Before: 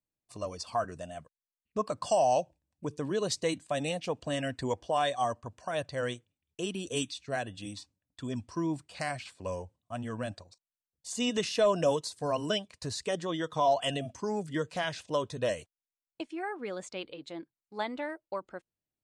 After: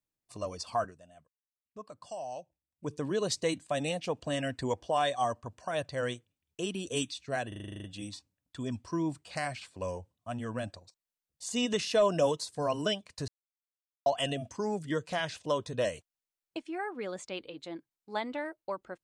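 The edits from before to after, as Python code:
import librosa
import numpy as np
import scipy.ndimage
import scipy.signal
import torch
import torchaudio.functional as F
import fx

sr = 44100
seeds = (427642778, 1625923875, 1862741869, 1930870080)

y = fx.edit(x, sr, fx.fade_down_up(start_s=0.84, length_s=2.04, db=-14.5, fade_s=0.14, curve='qua'),
    fx.stutter(start_s=7.48, slice_s=0.04, count=10),
    fx.silence(start_s=12.92, length_s=0.78), tone=tone)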